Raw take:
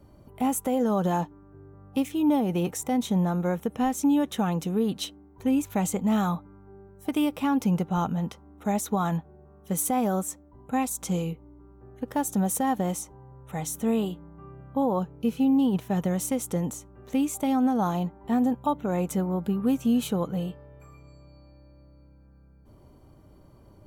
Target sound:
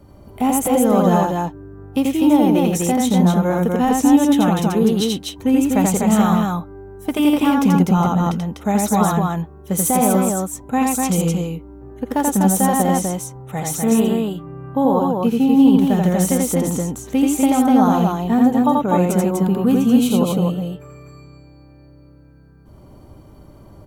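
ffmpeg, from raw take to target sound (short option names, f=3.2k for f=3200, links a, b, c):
-filter_complex "[0:a]asettb=1/sr,asplit=3[a][b][c];[a]atrim=end=19.974[d];[b]atrim=start=19.97:end=20.47,asetpts=PTS-STARTPTS,afade=t=in:d=0.004:c=qsin,afade=t=out:st=0.496:d=0.004:c=qsin,equalizer=f=1.7k:t=o:w=0.37:g=-13.5[e];[c]atrim=start=20.466[f];[d][e]acrossfade=d=0.004:c1=hsin:c2=qsin[g];[g][f]acrossfade=d=0.004:c1=qsin:c2=hsin,aecho=1:1:84.55|247.8:0.794|0.708,volume=7dB"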